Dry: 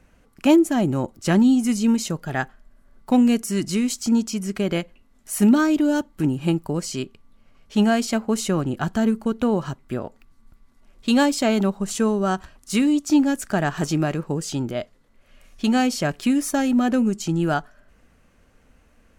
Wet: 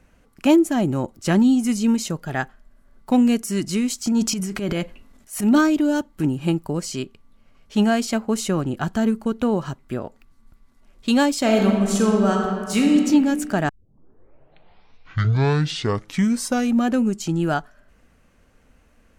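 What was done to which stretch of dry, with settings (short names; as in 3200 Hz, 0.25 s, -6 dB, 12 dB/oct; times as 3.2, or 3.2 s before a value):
4.07–5.72 transient shaper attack -9 dB, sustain +9 dB
11.39–12.97 reverb throw, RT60 1.9 s, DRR 0.5 dB
13.69 tape start 3.21 s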